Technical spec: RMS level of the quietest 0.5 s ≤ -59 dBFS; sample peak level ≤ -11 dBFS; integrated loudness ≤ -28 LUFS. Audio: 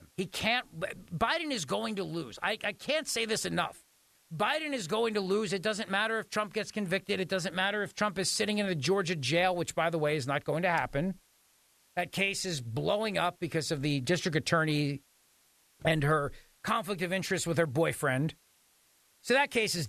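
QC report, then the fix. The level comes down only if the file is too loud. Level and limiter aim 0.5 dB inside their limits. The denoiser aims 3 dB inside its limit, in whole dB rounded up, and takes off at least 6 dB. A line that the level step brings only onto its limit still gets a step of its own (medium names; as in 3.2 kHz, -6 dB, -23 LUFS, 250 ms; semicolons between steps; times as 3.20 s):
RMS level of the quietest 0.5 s -67 dBFS: pass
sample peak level -14.5 dBFS: pass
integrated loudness -31.0 LUFS: pass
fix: none needed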